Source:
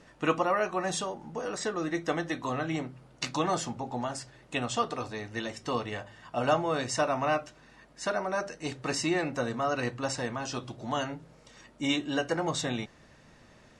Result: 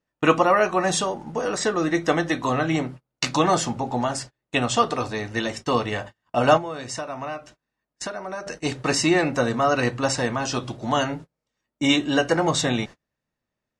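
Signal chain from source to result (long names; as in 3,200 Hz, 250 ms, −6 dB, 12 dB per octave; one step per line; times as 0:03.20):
noise gate −44 dBFS, range −36 dB
0:06.57–0:08.47: downward compressor 5 to 1, threshold −39 dBFS, peak gain reduction 15 dB
level +9 dB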